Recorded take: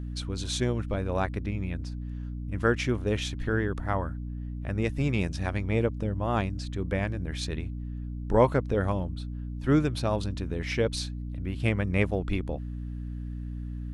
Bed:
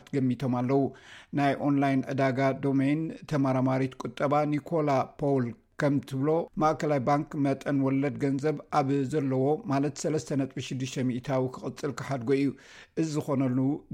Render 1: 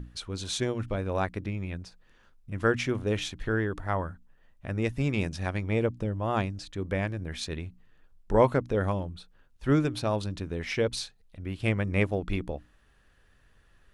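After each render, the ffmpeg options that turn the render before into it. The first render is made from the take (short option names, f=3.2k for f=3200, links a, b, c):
-af "bandreject=f=60:t=h:w=6,bandreject=f=120:t=h:w=6,bandreject=f=180:t=h:w=6,bandreject=f=240:t=h:w=6,bandreject=f=300:t=h:w=6"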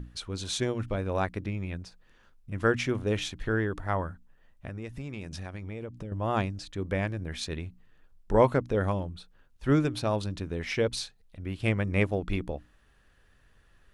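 -filter_complex "[0:a]asettb=1/sr,asplit=3[a][b][c];[a]atrim=end=4.674[d];[b]atrim=start=4.67:end=6.12,asetpts=PTS-STARTPTS,afade=t=in:d=0.004:c=qsin,afade=t=out:st=1.446:d=0.004:c=qsin,acompressor=threshold=-34dB:ratio=6:attack=3.2:release=140:knee=1:detection=peak[e];[c]atrim=start=6.116[f];[d][e]acrossfade=d=0.004:c1=hsin:c2=qsin[g];[g][f]acrossfade=d=0.004:c1=qsin:c2=hsin"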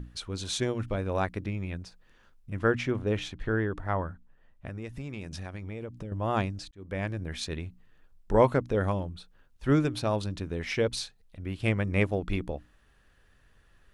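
-filter_complex "[0:a]asettb=1/sr,asplit=3[a][b][c];[a]atrim=end=2.594[d];[b]atrim=start=2.59:end=4.66,asetpts=PTS-STARTPTS,afade=t=in:d=0.004:c=qsin,afade=t=out:st=2.066:d=0.004:c=qsin,highshelf=f=4.4k:g=-10[e];[c]atrim=start=4.656[f];[d][e]acrossfade=d=0.004:c1=hsin:c2=qsin[g];[g][f]acrossfade=d=0.004:c1=qsin:c2=hsin,asplit=2[h][i];[h]atrim=end=6.71,asetpts=PTS-STARTPTS,afade=t=out:st=6.706:d=0.004:c=hsin[j];[i]atrim=start=6.71,asetpts=PTS-STARTPTS,afade=t=in:d=0.41[k];[j][k]concat=n=2:v=0:a=1"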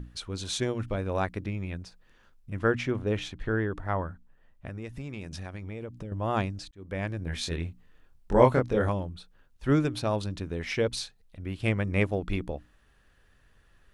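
-filter_complex "[0:a]asettb=1/sr,asplit=3[a][b][c];[a]atrim=end=7.244[d];[b]atrim=start=7.24:end=8.89,asetpts=PTS-STARTPTS,afade=t=in:d=0.004:c=qsin,afade=t=out:st=1.646:d=0.004:c=qsin,asplit=2[e][f];[f]adelay=24,volume=-2dB[g];[e][g]amix=inputs=2:normalize=0,atrim=end_sample=72765[h];[c]atrim=start=8.886[i];[d][h]acrossfade=d=0.004:c1=hsin:c2=qsin[j];[j][i]acrossfade=d=0.004:c1=qsin:c2=hsin"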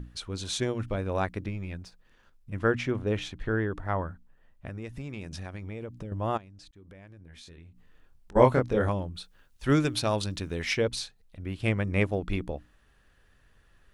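-filter_complex "[0:a]asettb=1/sr,asplit=3[a][b][c];[a]atrim=end=1.484[d];[b]atrim=start=1.48:end=2.53,asetpts=PTS-STARTPTS,afade=t=in:d=0.004:c=qsin,afade=t=out:st=1.046:d=0.004:c=qsin,aeval=exprs='if(lt(val(0),0),0.708*val(0),val(0))':c=same[e];[c]atrim=start=2.526[f];[d][e]acrossfade=d=0.004:c1=hsin:c2=qsin[g];[g][f]acrossfade=d=0.004:c1=qsin:c2=hsin,asplit=3[h][i][j];[h]afade=t=out:st=6.36:d=0.02[k];[i]acompressor=threshold=-48dB:ratio=5:attack=3.2:release=140:knee=1:detection=peak,afade=t=in:st=6.36:d=0.02,afade=t=out:st=8.35:d=0.02[l];[j]afade=t=in:st=8.35:d=0.02[m];[k][l][m]amix=inputs=3:normalize=0,asplit=3[n][o][p];[n]afade=t=out:st=9.14:d=0.02[q];[o]highshelf=f=2k:g=8.5,afade=t=in:st=9.14:d=0.02,afade=t=out:st=10.73:d=0.02[r];[p]afade=t=in:st=10.73:d=0.02[s];[q][r][s]amix=inputs=3:normalize=0"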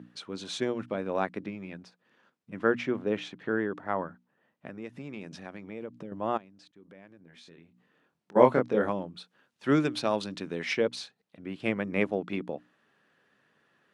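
-af "highpass=f=170:w=0.5412,highpass=f=170:w=1.3066,aemphasis=mode=reproduction:type=50fm"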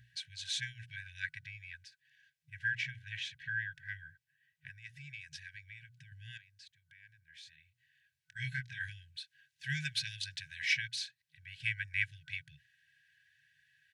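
-af "aecho=1:1:3.1:0.5,afftfilt=real='re*(1-between(b*sr/4096,160,1500))':imag='im*(1-between(b*sr/4096,160,1500))':win_size=4096:overlap=0.75"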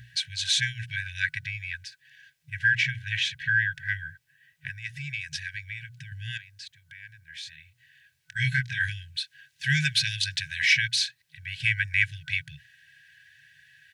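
-filter_complex "[0:a]asplit=2[a][b];[b]alimiter=level_in=4.5dB:limit=-24dB:level=0:latency=1:release=38,volume=-4.5dB,volume=2.5dB[c];[a][c]amix=inputs=2:normalize=0,acontrast=67"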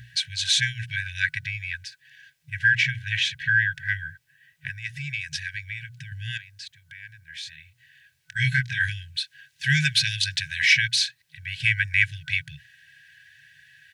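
-af "volume=3dB"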